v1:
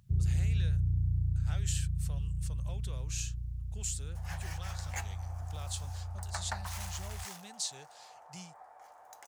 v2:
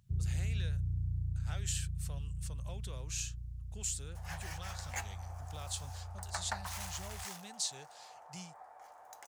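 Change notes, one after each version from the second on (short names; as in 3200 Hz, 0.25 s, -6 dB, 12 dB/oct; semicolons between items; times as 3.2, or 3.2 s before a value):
first sound -5.5 dB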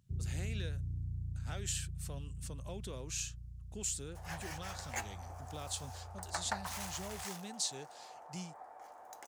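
first sound -5.5 dB; master: add bell 300 Hz +10 dB 1.4 oct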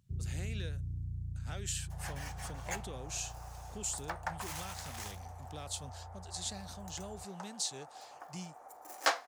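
second sound: entry -2.25 s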